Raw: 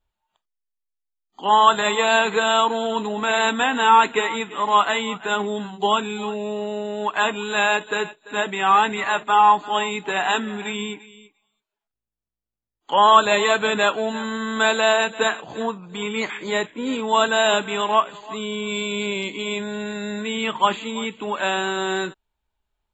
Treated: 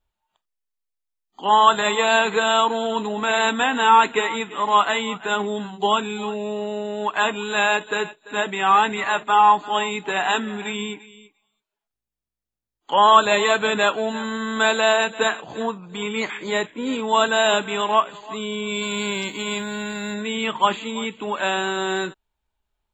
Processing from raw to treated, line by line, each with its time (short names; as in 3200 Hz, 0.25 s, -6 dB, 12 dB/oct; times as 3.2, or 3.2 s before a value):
18.81–20.13 spectral whitening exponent 0.6